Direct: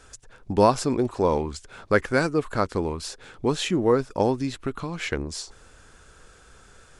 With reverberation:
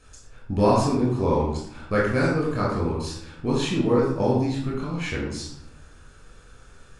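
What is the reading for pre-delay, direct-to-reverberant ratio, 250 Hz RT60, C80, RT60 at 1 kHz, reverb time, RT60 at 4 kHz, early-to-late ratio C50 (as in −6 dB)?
21 ms, −5.0 dB, 1.2 s, 5.5 dB, 0.75 s, 0.75 s, 0.50 s, 2.0 dB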